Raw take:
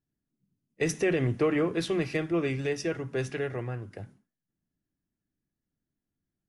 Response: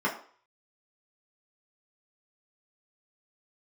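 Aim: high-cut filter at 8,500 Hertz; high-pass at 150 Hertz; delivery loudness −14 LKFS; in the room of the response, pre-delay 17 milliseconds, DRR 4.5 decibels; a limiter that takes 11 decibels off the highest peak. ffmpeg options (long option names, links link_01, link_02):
-filter_complex "[0:a]highpass=150,lowpass=8500,alimiter=level_in=3dB:limit=-24dB:level=0:latency=1,volume=-3dB,asplit=2[link_01][link_02];[1:a]atrim=start_sample=2205,adelay=17[link_03];[link_02][link_03]afir=irnorm=-1:irlink=0,volume=-16dB[link_04];[link_01][link_04]amix=inputs=2:normalize=0,volume=21dB"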